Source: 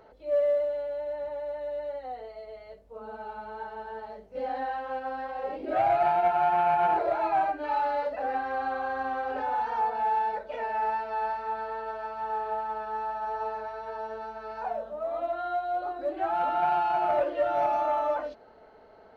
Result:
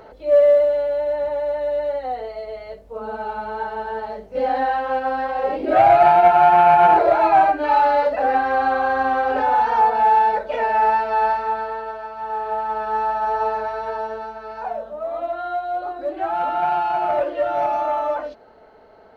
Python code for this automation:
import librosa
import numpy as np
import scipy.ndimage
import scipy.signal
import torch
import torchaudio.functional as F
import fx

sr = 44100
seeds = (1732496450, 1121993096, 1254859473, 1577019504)

y = fx.gain(x, sr, db=fx.line((11.32, 11.5), (12.1, 3.0), (12.95, 11.0), (13.86, 11.0), (14.41, 5.0)))